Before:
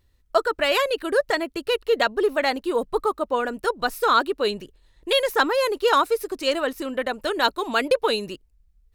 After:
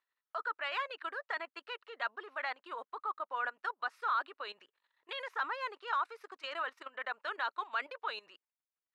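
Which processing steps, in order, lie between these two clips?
output level in coarse steps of 14 dB
four-pole ladder band-pass 1,500 Hz, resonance 30%
level +7 dB

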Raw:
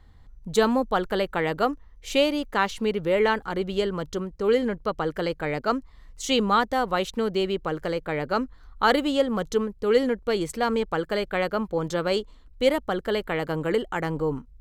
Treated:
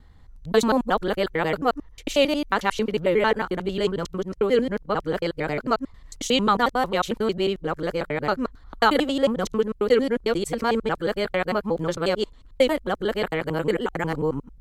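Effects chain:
reversed piece by piece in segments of 90 ms
level +2 dB
MP3 80 kbit/s 48,000 Hz

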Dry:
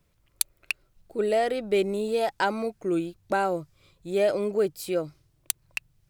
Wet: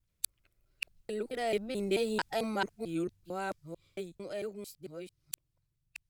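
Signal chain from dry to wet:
reversed piece by piece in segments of 221 ms
source passing by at 0:02.21, 5 m/s, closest 3.7 metres
parametric band 690 Hz −7 dB 2.8 octaves

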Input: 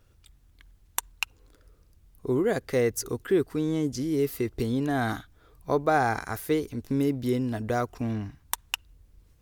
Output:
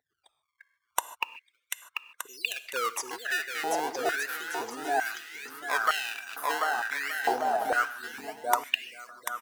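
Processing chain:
gate on every frequency bin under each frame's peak −15 dB strong
in parallel at −4 dB: sample-and-hold swept by an LFO 23×, swing 160% 0.36 Hz
on the sum: bouncing-ball delay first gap 740 ms, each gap 0.65×, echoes 5
on a send at −14 dB: convolution reverb, pre-delay 3 ms
on the sum: high-pass on a step sequencer 2.2 Hz 770–2,500 Hz
level −2.5 dB

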